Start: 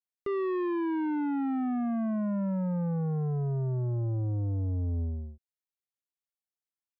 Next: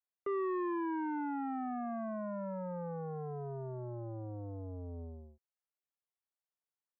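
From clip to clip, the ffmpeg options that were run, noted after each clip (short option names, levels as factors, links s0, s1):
-filter_complex "[0:a]acrossover=split=390 2000:gain=0.178 1 0.0891[s0][s1][s2];[s0][s1][s2]amix=inputs=3:normalize=0"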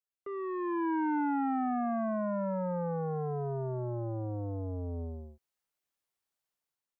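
-af "dynaudnorm=f=290:g=5:m=3.98,volume=0.562"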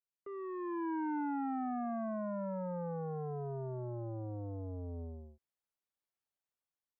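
-af "highshelf=f=2400:g=-7,volume=0.531"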